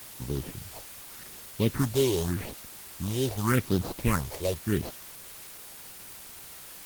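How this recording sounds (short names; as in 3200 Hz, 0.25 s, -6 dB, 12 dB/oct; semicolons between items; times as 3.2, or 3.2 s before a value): aliases and images of a low sample rate 3400 Hz, jitter 20%; phasing stages 4, 0.85 Hz, lowest notch 210–2100 Hz; a quantiser's noise floor 8-bit, dither triangular; Opus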